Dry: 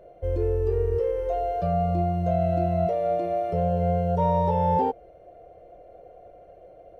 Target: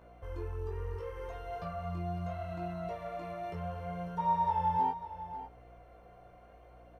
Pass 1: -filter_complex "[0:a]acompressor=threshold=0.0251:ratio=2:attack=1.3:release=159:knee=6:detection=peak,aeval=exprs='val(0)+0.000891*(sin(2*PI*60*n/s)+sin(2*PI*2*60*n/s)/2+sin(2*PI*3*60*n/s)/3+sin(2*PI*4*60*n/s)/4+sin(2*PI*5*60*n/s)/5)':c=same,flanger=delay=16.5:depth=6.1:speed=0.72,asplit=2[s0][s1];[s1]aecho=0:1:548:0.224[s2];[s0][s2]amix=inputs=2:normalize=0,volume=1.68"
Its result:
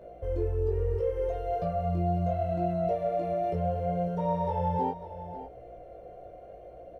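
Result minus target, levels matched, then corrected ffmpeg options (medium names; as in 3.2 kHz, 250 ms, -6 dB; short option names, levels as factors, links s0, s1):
1 kHz band -5.5 dB
-filter_complex "[0:a]acompressor=threshold=0.0251:ratio=2:attack=1.3:release=159:knee=6:detection=peak,lowshelf=f=780:t=q:w=3:g=-8.5,aeval=exprs='val(0)+0.000891*(sin(2*PI*60*n/s)+sin(2*PI*2*60*n/s)/2+sin(2*PI*3*60*n/s)/3+sin(2*PI*4*60*n/s)/4+sin(2*PI*5*60*n/s)/5)':c=same,flanger=delay=16.5:depth=6.1:speed=0.72,asplit=2[s0][s1];[s1]aecho=0:1:548:0.224[s2];[s0][s2]amix=inputs=2:normalize=0,volume=1.68"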